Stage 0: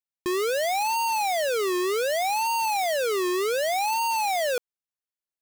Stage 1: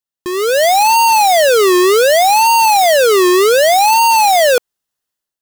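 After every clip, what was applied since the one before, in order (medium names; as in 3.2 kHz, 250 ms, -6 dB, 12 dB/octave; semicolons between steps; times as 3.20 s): band-stop 2.3 kHz, Q 6.8; level rider gain up to 11.5 dB; trim +4 dB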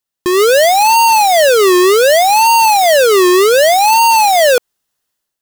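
peak limiter -13.5 dBFS, peak gain reduction 7 dB; trim +7 dB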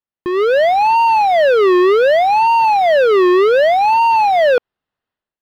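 level rider gain up to 6 dB; distance through air 390 m; trim -5 dB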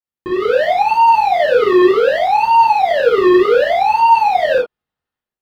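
tremolo saw up 11 Hz, depth 80%; gated-style reverb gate 90 ms flat, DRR -5 dB; trim -3.5 dB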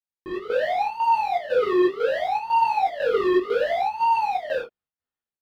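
square tremolo 2 Hz, depth 65%, duty 75%; detune thickener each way 11 cents; trim -6 dB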